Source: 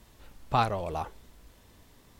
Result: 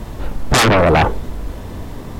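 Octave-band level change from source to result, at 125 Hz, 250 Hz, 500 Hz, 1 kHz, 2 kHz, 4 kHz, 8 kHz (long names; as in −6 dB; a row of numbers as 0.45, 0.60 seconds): +18.0, +21.0, +19.0, +12.5, +23.5, +21.5, +29.5 decibels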